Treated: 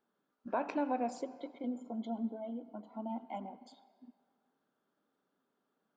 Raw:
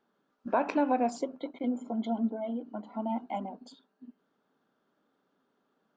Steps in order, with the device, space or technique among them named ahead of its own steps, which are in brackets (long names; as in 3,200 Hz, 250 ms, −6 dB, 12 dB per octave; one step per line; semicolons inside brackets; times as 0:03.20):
filtered reverb send (on a send: high-pass filter 350 Hz + low-pass filter 5,800 Hz 12 dB per octave + convolution reverb RT60 1.9 s, pre-delay 80 ms, DRR 16 dB)
0:01.62–0:03.21: on the sum: parametric band 1,900 Hz −5.5 dB 1.1 octaves
level −7 dB